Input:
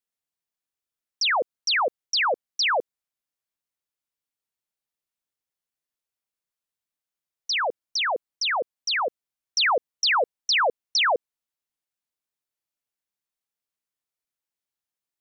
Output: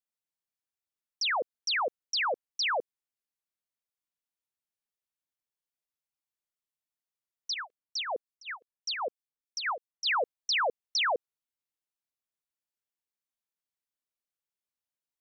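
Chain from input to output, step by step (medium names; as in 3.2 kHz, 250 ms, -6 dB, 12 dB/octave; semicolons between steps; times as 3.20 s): 7.54–10.06 s: harmonic tremolo 3.3 Hz, depth 100%, crossover 2.2 kHz; trim -6.5 dB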